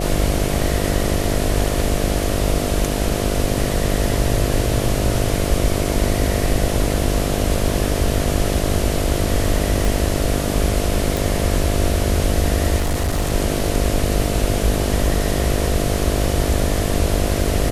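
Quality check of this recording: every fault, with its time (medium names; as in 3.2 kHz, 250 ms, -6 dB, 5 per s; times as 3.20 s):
buzz 50 Hz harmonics 14 -23 dBFS
9.85 s: pop
11.17 s: pop
12.78–13.33 s: clipped -15.5 dBFS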